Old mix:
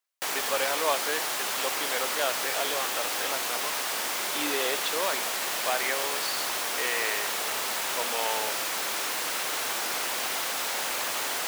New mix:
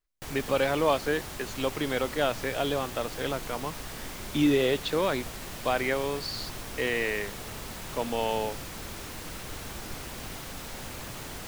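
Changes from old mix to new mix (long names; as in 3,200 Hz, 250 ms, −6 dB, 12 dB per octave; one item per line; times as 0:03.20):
background −12.0 dB
master: remove high-pass filter 620 Hz 12 dB per octave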